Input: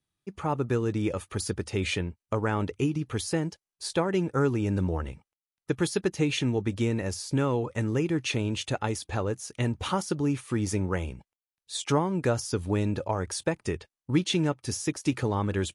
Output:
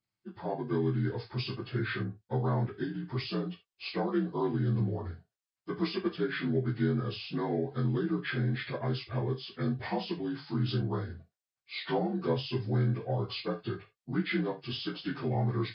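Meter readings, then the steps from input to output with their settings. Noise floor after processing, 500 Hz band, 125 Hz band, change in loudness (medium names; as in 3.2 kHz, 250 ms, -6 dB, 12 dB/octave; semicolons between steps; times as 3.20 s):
under -85 dBFS, -4.5 dB, -2.0 dB, -4.0 dB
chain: frequency axis rescaled in octaves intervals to 80%; gated-style reverb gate 100 ms falling, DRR 4 dB; trim -4.5 dB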